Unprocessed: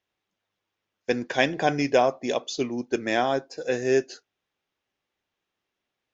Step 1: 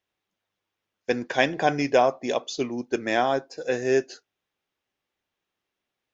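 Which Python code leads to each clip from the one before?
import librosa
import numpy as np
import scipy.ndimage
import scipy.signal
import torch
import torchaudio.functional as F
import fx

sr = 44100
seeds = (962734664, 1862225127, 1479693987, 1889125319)

y = fx.dynamic_eq(x, sr, hz=1000.0, q=0.73, threshold_db=-35.0, ratio=4.0, max_db=3)
y = y * 10.0 ** (-1.0 / 20.0)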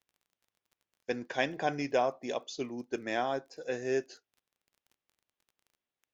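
y = fx.dmg_crackle(x, sr, seeds[0], per_s=21.0, level_db=-42.0)
y = y * 10.0 ** (-9.0 / 20.0)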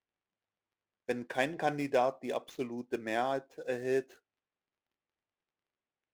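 y = scipy.ndimage.median_filter(x, 9, mode='constant')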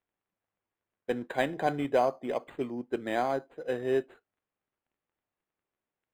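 y = np.interp(np.arange(len(x)), np.arange(len(x))[::8], x[::8])
y = y * 10.0 ** (3.5 / 20.0)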